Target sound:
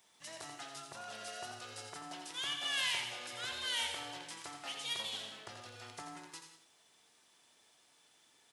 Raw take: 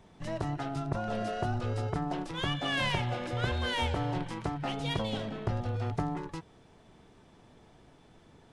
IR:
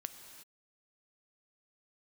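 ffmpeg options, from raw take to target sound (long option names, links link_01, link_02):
-filter_complex "[0:a]aderivative,aecho=1:1:85:0.398[link_01];[1:a]atrim=start_sample=2205,asetrate=83790,aresample=44100[link_02];[link_01][link_02]afir=irnorm=-1:irlink=0,volume=14.5dB"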